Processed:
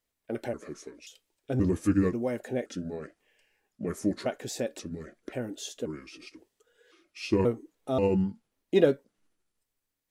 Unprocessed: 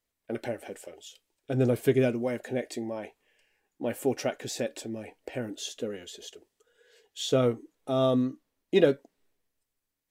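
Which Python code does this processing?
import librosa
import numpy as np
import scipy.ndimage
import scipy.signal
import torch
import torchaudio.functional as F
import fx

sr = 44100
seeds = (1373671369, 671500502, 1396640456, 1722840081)

y = fx.pitch_trill(x, sr, semitones=-5.0, every_ms=532)
y = fx.dynamic_eq(y, sr, hz=2900.0, q=0.82, threshold_db=-49.0, ratio=4.0, max_db=-4)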